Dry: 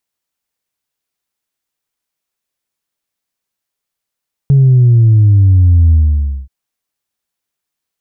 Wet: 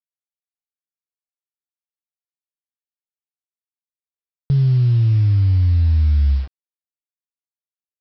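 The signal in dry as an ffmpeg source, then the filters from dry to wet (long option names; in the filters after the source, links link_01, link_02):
-f lavfi -i "aevalsrc='0.596*clip((1.98-t)/0.56,0,1)*tanh(1*sin(2*PI*140*1.98/log(65/140)*(exp(log(65/140)*t/1.98)-1)))/tanh(1)':duration=1.98:sample_rate=44100"
-af "bass=frequency=250:gain=4,treble=frequency=4000:gain=2,alimiter=limit=-11.5dB:level=0:latency=1,aresample=11025,acrusher=bits=6:mix=0:aa=0.000001,aresample=44100"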